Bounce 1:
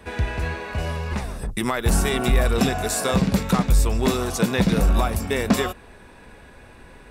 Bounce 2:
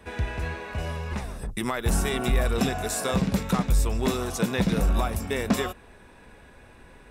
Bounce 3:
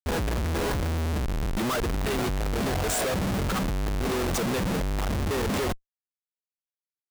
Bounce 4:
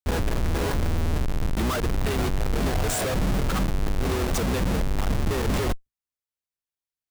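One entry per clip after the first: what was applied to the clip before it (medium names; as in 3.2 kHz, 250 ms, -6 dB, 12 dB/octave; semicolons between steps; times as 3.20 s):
band-stop 4.5 kHz, Q 18; trim -4.5 dB
resonances exaggerated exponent 1.5; Schmitt trigger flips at -37.5 dBFS
octave divider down 2 oct, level +3 dB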